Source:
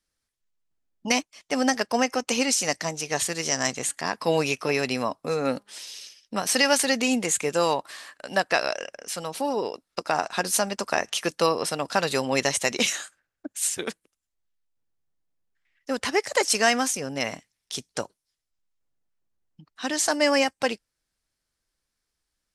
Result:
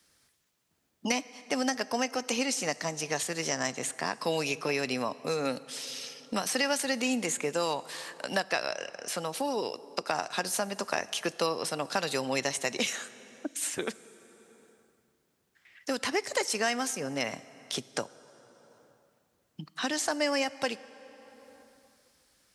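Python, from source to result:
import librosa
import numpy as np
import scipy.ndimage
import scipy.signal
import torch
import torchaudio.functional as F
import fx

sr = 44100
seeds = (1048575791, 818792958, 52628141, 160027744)

y = scipy.signal.sosfilt(scipy.signal.butter(2, 86.0, 'highpass', fs=sr, output='sos'), x)
y = fx.rev_plate(y, sr, seeds[0], rt60_s=1.9, hf_ratio=0.75, predelay_ms=0, drr_db=18.5)
y = fx.band_squash(y, sr, depth_pct=70)
y = F.gain(torch.from_numpy(y), -6.0).numpy()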